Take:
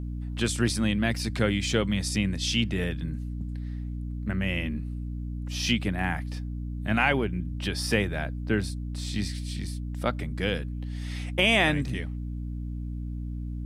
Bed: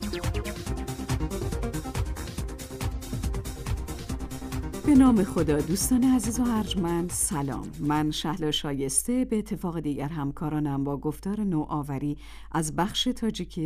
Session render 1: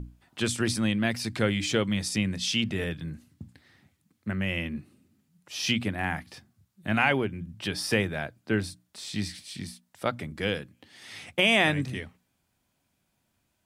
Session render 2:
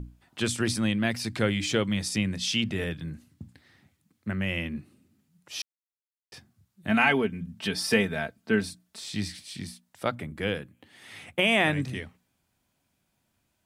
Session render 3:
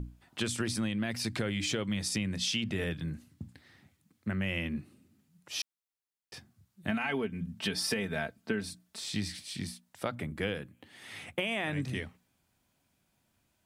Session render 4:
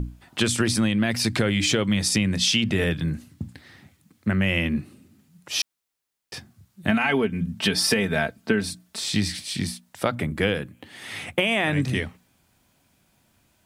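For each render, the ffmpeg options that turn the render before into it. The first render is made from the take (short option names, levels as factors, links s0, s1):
-af "bandreject=f=60:t=h:w=6,bandreject=f=120:t=h:w=6,bandreject=f=180:t=h:w=6,bandreject=f=240:t=h:w=6,bandreject=f=300:t=h:w=6"
-filter_complex "[0:a]asettb=1/sr,asplit=3[s0][s1][s2];[s0]atrim=end=6.894[s3];[s1]atrim=start=6.89:end=9,asetpts=PTS-STARTPTS,afade=t=in:d=0.004:c=qsin,afade=t=out:st=2.106:d=0.004:c=qsin,aecho=1:1:4.5:0.65,atrim=end_sample=93051[s4];[s2]atrim=start=8.996[s5];[s3][s4]acrossfade=d=0.004:c1=hsin:c2=qsin[s6];[s6][s5]acrossfade=d=0.004:c1=qsin:c2=hsin,asettb=1/sr,asplit=3[s7][s8][s9];[s7]atrim=end=10.154[s10];[s8]atrim=start=10.15:end=11.73,asetpts=PTS-STARTPTS,afade=t=in:d=0.004:c=qsin,afade=t=out:st=1.576:d=0.004:c=qsin,equalizer=f=5200:w=1.4:g=-8.5[s11];[s9]atrim=start=11.726[s12];[s10][s11]acrossfade=d=0.004:c1=hsin:c2=qsin[s13];[s13][s12]acrossfade=d=0.004:c1=qsin:c2=hsin,asplit=3[s14][s15][s16];[s14]atrim=end=5.62,asetpts=PTS-STARTPTS,afade=t=out:st=5.616:d=0.004:c=hsin[s17];[s15]atrim=start=5.62:end=6.32,asetpts=PTS-STARTPTS,volume=0[s18];[s16]atrim=start=6.32,asetpts=PTS-STARTPTS,afade=t=in:d=0.004:c=hsin[s19];[s17][s18][s19]concat=n=3:v=0:a=1"
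-af "alimiter=limit=0.178:level=0:latency=1:release=33,acompressor=threshold=0.0398:ratio=10"
-af "volume=3.35"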